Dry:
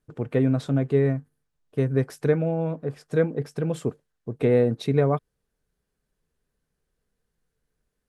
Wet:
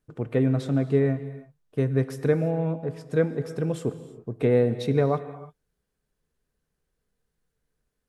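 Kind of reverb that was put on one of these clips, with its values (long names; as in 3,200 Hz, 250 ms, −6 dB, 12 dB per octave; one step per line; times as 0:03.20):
reverb whose tail is shaped and stops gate 360 ms flat, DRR 12 dB
level −1 dB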